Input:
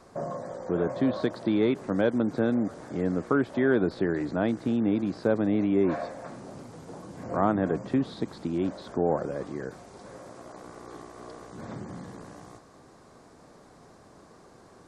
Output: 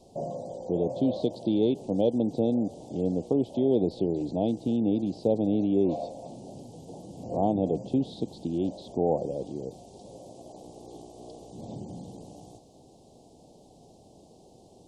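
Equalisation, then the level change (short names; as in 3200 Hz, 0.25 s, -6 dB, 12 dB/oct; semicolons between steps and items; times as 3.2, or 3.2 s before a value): Chebyshev band-stop 800–3000 Hz, order 3; dynamic EQ 490 Hz, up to +4 dB, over -43 dBFS, Q 7.9; 0.0 dB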